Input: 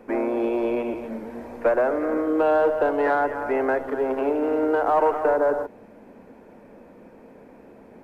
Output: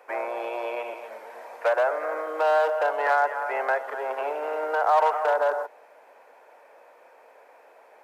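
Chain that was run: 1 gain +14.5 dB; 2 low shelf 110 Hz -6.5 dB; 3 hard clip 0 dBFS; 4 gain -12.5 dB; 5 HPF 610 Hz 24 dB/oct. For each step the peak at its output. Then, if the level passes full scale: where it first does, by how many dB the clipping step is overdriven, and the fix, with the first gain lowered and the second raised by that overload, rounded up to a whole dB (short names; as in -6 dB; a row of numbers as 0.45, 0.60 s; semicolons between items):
+4.5, +4.5, 0.0, -12.5, -10.5 dBFS; step 1, 4.5 dB; step 1 +9.5 dB, step 4 -7.5 dB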